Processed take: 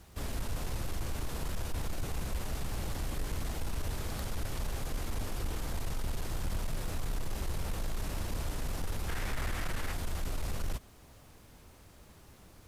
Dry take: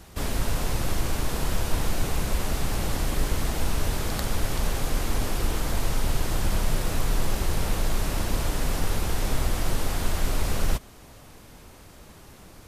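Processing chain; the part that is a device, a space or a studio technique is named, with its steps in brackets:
open-reel tape (soft clipping −18 dBFS, distortion −17 dB; parametric band 78 Hz +4 dB 1.16 octaves; white noise bed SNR 41 dB)
0:09.08–0:09.93: parametric band 1,800 Hz +10 dB 1.3 octaves
level −9 dB

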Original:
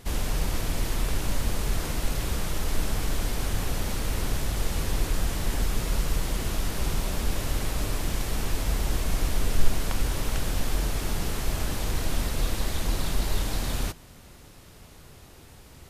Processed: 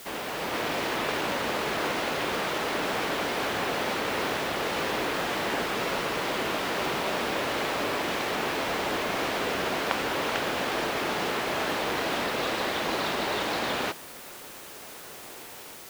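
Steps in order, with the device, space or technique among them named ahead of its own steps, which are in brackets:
dictaphone (band-pass filter 380–3,100 Hz; automatic gain control gain up to 5.5 dB; tape wow and flutter; white noise bed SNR 16 dB)
level +4 dB

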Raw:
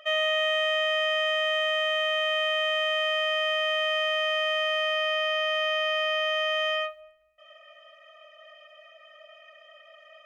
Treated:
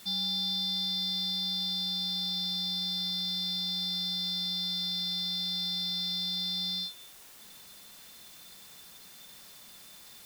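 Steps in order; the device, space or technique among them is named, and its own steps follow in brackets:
split-band scrambled radio (band-splitting scrambler in four parts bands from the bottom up 3412; band-pass filter 350–3,200 Hz; white noise bed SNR 18 dB)

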